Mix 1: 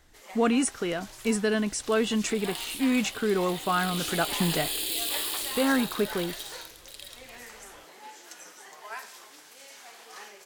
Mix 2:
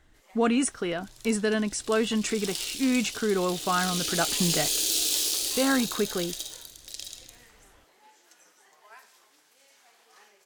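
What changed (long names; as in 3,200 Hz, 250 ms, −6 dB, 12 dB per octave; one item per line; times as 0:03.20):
first sound −11.5 dB
second sound: remove phaser with its sweep stopped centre 2,600 Hz, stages 4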